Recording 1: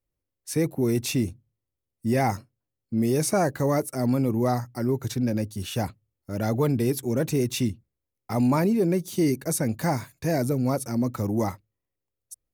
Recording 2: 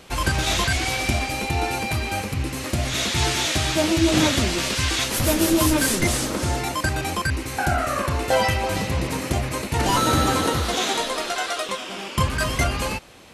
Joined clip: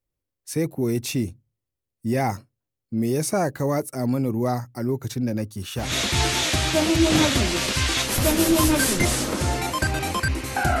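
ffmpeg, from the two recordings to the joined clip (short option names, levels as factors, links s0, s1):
-filter_complex "[0:a]asettb=1/sr,asplit=3[s0][s1][s2];[s0]atrim=end=5.384[s3];[s1]atrim=start=5.38:end=5.91,asetpts=PTS-STARTPTS,afade=t=in:d=0.004:c=qsin,afade=t=out:st=0.526:d=0.004:c=qsin,equalizer=f=1200:w=2.1:g=8[s4];[s2]atrim=start=5.906[s5];[s3][s4]acrossfade=d=0.004:c1=hsin:c2=qsin[s6];[s6][s5]acrossfade=d=0.004:c1=qsin:c2=hsin,apad=whole_dur=10.8,atrim=end=10.8,atrim=end=5.91,asetpts=PTS-STARTPTS[s7];[1:a]atrim=start=2.77:end=7.82,asetpts=PTS-STARTPTS[s8];[s7][s8]acrossfade=d=0.16:c1=tri:c2=tri"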